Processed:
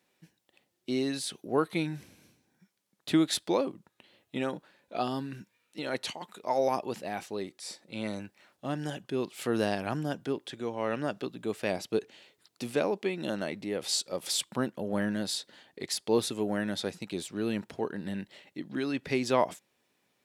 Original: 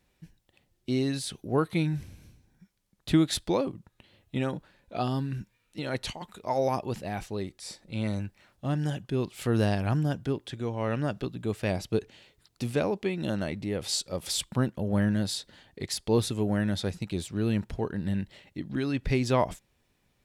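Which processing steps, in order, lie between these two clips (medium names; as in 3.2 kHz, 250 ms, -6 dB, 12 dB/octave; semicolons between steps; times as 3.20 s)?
high-pass 250 Hz 12 dB/octave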